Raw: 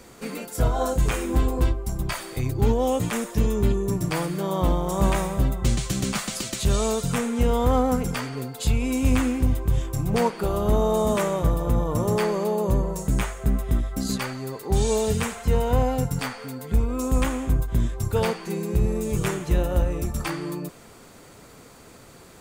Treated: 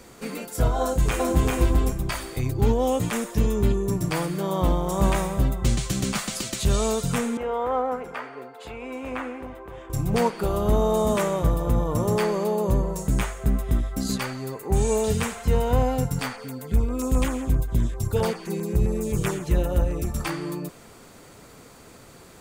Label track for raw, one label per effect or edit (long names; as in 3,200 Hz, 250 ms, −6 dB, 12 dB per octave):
0.800000	1.520000	delay throw 390 ms, feedback 15%, level −1.5 dB
7.370000	9.900000	three-way crossover with the lows and the highs turned down lows −24 dB, under 370 Hz, highs −21 dB, over 2,400 Hz
14.540000	15.040000	flat-topped bell 4,200 Hz −9 dB 1 octave
16.360000	20.070000	auto-filter notch saw down 7.6 Hz 620–5,500 Hz